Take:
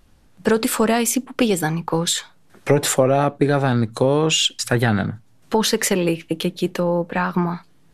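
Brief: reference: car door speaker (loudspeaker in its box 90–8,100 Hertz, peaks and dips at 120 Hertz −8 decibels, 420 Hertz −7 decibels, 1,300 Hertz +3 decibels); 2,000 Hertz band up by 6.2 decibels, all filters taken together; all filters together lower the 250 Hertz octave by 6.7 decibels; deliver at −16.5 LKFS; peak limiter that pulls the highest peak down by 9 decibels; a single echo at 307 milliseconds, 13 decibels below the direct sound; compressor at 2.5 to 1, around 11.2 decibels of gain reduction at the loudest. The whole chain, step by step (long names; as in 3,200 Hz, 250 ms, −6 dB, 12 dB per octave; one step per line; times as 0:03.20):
parametric band 250 Hz −7.5 dB
parametric band 2,000 Hz +7.5 dB
downward compressor 2.5 to 1, threshold −30 dBFS
brickwall limiter −19 dBFS
loudspeaker in its box 90–8,100 Hz, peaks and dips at 120 Hz −8 dB, 420 Hz −7 dB, 1,300 Hz +3 dB
single-tap delay 307 ms −13 dB
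level +15 dB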